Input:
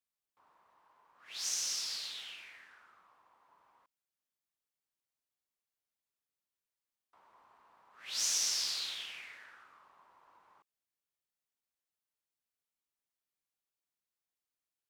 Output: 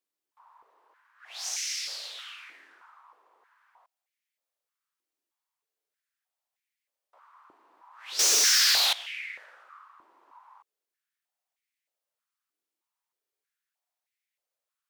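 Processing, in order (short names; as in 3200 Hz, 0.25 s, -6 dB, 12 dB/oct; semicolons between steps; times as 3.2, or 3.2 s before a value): 8.19–8.93 sample leveller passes 5; stepped high-pass 3.2 Hz 320–2100 Hz; gain +1.5 dB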